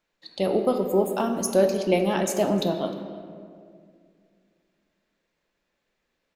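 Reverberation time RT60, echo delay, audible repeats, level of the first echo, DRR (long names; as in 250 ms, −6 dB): 2.2 s, 306 ms, 1, −21.5 dB, 5.0 dB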